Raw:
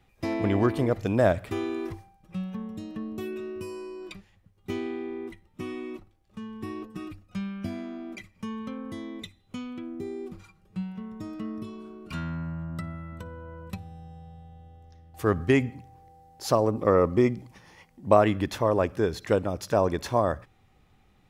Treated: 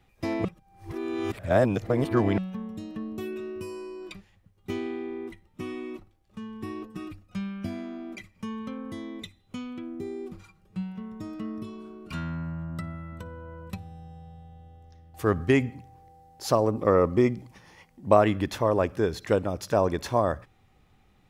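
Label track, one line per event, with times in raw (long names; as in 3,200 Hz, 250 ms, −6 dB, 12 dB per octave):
0.450000	2.380000	reverse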